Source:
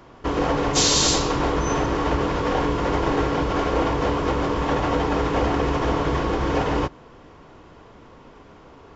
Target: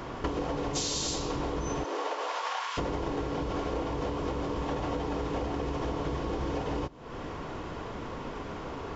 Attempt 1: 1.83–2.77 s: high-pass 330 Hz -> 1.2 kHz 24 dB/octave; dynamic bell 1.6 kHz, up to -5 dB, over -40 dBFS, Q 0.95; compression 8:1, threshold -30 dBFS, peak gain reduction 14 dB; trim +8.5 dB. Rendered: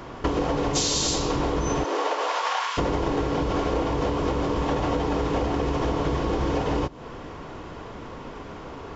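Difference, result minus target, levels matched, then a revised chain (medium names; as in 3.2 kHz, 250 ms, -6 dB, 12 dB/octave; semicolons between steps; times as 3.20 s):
compression: peak gain reduction -7.5 dB
1.83–2.77 s: high-pass 330 Hz -> 1.2 kHz 24 dB/octave; dynamic bell 1.6 kHz, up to -5 dB, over -40 dBFS, Q 0.95; compression 8:1, threshold -38.5 dBFS, peak gain reduction 21.5 dB; trim +8.5 dB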